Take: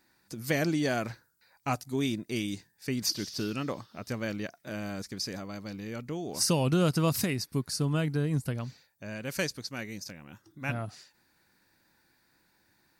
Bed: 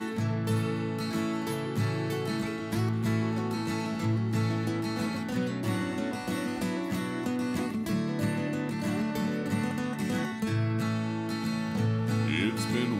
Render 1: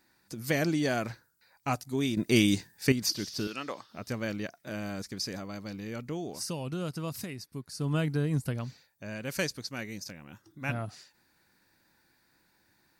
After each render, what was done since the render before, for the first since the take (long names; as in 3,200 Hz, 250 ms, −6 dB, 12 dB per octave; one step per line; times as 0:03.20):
0:02.17–0:02.92: clip gain +9.5 dB
0:03.47–0:03.89: meter weighting curve A
0:06.24–0:07.92: duck −9.5 dB, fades 0.18 s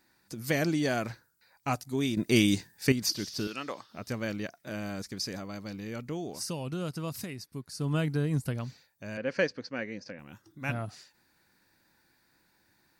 0:09.17–0:10.19: loudspeaker in its box 130–4,500 Hz, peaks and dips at 140 Hz −4 dB, 260 Hz +4 dB, 510 Hz +10 dB, 1,700 Hz +5 dB, 3,700 Hz −9 dB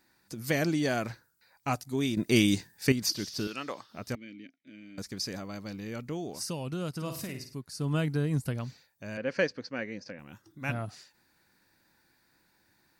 0:04.15–0:04.98: formant filter i
0:06.91–0:07.55: flutter between parallel walls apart 8.9 metres, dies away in 0.43 s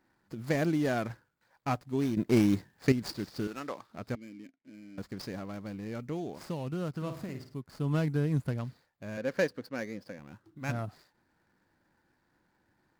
running median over 15 samples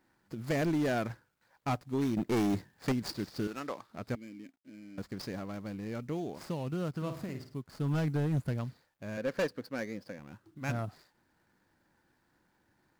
gain into a clipping stage and back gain 25.5 dB
log-companded quantiser 8 bits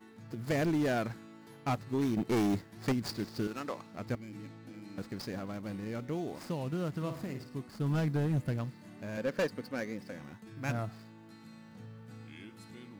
mix in bed −21.5 dB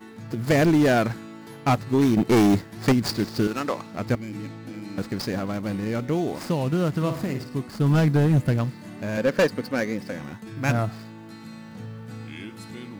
level +11.5 dB